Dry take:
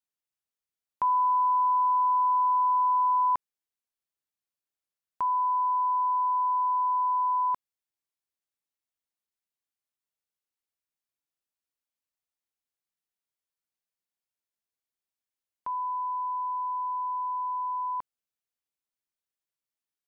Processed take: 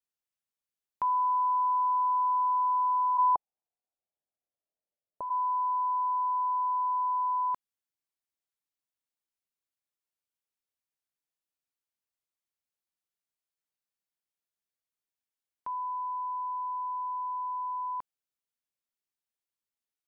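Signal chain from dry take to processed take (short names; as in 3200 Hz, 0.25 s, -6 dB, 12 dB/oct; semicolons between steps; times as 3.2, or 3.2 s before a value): 3.17–5.29 synth low-pass 810 Hz -> 580 Hz, resonance Q 3.7; gain -3 dB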